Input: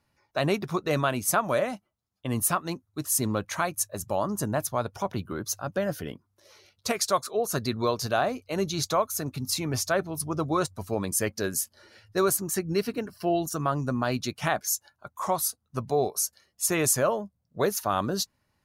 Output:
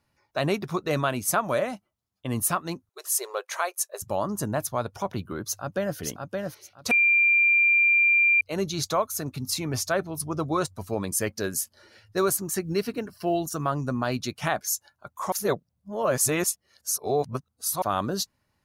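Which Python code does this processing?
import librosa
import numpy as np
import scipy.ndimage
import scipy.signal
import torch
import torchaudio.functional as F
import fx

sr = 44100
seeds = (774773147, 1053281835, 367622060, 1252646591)

y = fx.brickwall_highpass(x, sr, low_hz=360.0, at=(2.89, 4.02))
y = fx.echo_throw(y, sr, start_s=5.45, length_s=0.52, ms=570, feedback_pct=20, wet_db=-3.5)
y = fx.quant_float(y, sr, bits=6, at=(11.13, 13.71))
y = fx.edit(y, sr, fx.bleep(start_s=6.91, length_s=1.5, hz=2380.0, db=-16.5),
    fx.reverse_span(start_s=15.32, length_s=2.5), tone=tone)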